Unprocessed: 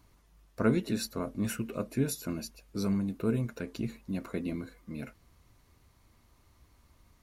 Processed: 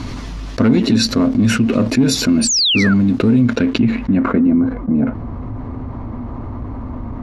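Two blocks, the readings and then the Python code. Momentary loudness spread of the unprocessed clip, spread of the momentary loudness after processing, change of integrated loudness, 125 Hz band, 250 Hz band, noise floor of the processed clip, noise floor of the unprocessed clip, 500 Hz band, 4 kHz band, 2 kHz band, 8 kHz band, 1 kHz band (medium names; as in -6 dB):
13 LU, 16 LU, +19.0 dB, +16.5 dB, +20.0 dB, -28 dBFS, -65 dBFS, +13.5 dB, +27.0 dB, +21.0 dB, +21.0 dB, +17.0 dB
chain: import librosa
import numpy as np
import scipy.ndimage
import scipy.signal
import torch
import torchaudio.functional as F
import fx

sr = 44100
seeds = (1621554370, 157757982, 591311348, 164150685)

y = fx.leveller(x, sr, passes=2)
y = fx.peak_eq(y, sr, hz=250.0, db=14.5, octaves=0.33)
y = fx.spec_paint(y, sr, seeds[0], shape='fall', start_s=2.41, length_s=0.53, low_hz=1300.0, high_hz=9800.0, level_db=-27.0)
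y = fx.filter_sweep_lowpass(y, sr, from_hz=4900.0, to_hz=900.0, start_s=3.37, end_s=4.74, q=1.2)
y = fx.peak_eq(y, sr, hz=110.0, db=8.0, octaves=0.29)
y = fx.env_flatten(y, sr, amount_pct=70)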